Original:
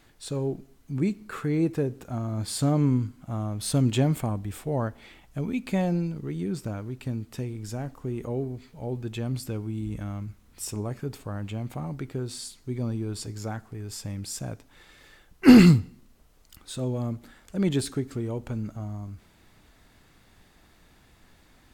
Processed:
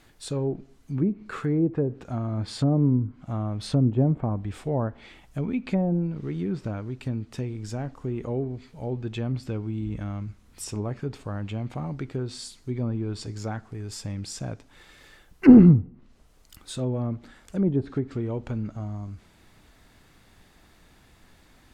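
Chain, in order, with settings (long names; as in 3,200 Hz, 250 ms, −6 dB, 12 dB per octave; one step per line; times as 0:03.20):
0:06.10–0:06.70: background noise pink −61 dBFS
treble cut that deepens with the level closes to 650 Hz, closed at −20.5 dBFS
level +1.5 dB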